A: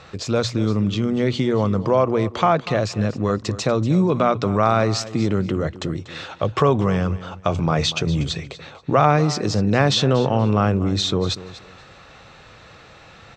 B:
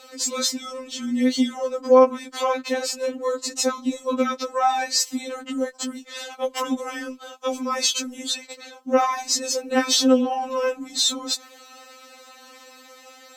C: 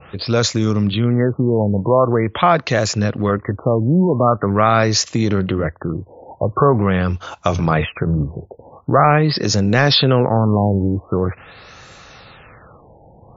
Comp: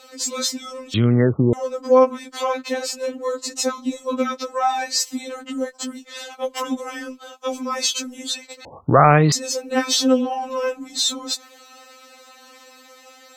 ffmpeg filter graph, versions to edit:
-filter_complex "[2:a]asplit=2[s0][s1];[1:a]asplit=3[s2][s3][s4];[s2]atrim=end=0.942[s5];[s0]atrim=start=0.938:end=1.532[s6];[s3]atrim=start=1.528:end=8.652[s7];[s1]atrim=start=8.648:end=9.322[s8];[s4]atrim=start=9.318[s9];[s5][s6]acrossfade=d=0.004:c1=hsin:c2=hsin[s10];[s10][s7]acrossfade=d=0.004:c1=hsin:c2=hsin[s11];[s11][s8]acrossfade=d=0.004:c1=hsin:c2=hsin[s12];[s12][s9]acrossfade=d=0.004:c1=hsin:c2=hsin"

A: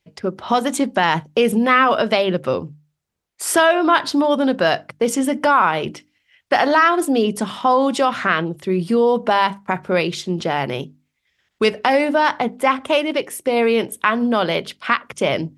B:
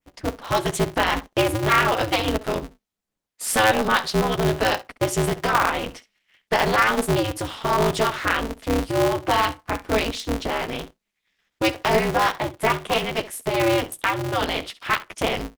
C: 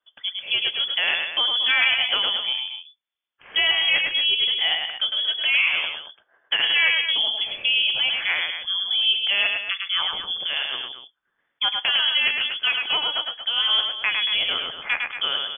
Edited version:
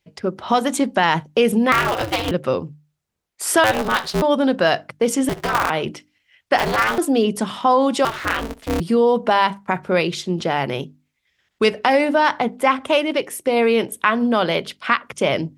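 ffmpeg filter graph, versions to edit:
-filter_complex "[1:a]asplit=5[s0][s1][s2][s3][s4];[0:a]asplit=6[s5][s6][s7][s8][s9][s10];[s5]atrim=end=1.722[s11];[s0]atrim=start=1.718:end=2.312[s12];[s6]atrim=start=2.308:end=3.642[s13];[s1]atrim=start=3.638:end=4.222[s14];[s7]atrim=start=4.218:end=5.292[s15];[s2]atrim=start=5.288:end=5.702[s16];[s8]atrim=start=5.698:end=6.582[s17];[s3]atrim=start=6.578:end=6.982[s18];[s9]atrim=start=6.978:end=8.052[s19];[s4]atrim=start=8.048:end=8.802[s20];[s10]atrim=start=8.798[s21];[s11][s12]acrossfade=d=0.004:c1=hsin:c2=hsin[s22];[s22][s13]acrossfade=d=0.004:c1=hsin:c2=hsin[s23];[s23][s14]acrossfade=d=0.004:c1=hsin:c2=hsin[s24];[s24][s15]acrossfade=d=0.004:c1=hsin:c2=hsin[s25];[s25][s16]acrossfade=d=0.004:c1=hsin:c2=hsin[s26];[s26][s17]acrossfade=d=0.004:c1=hsin:c2=hsin[s27];[s27][s18]acrossfade=d=0.004:c1=hsin:c2=hsin[s28];[s28][s19]acrossfade=d=0.004:c1=hsin:c2=hsin[s29];[s29][s20]acrossfade=d=0.004:c1=hsin:c2=hsin[s30];[s30][s21]acrossfade=d=0.004:c1=hsin:c2=hsin"

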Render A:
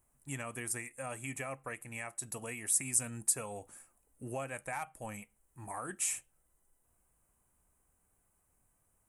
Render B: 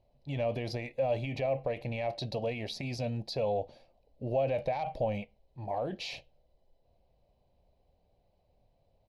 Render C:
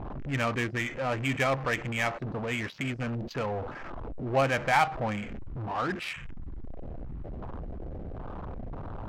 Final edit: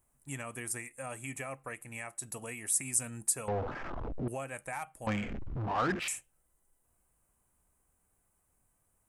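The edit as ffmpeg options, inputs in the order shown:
-filter_complex "[2:a]asplit=2[s0][s1];[0:a]asplit=3[s2][s3][s4];[s2]atrim=end=3.482[s5];[s0]atrim=start=3.478:end=4.282[s6];[s3]atrim=start=4.278:end=5.072[s7];[s1]atrim=start=5.068:end=6.082[s8];[s4]atrim=start=6.078[s9];[s5][s6]acrossfade=d=0.004:c1=hsin:c2=hsin[s10];[s10][s7]acrossfade=d=0.004:c1=hsin:c2=hsin[s11];[s11][s8]acrossfade=d=0.004:c1=hsin:c2=hsin[s12];[s12][s9]acrossfade=d=0.004:c1=hsin:c2=hsin"

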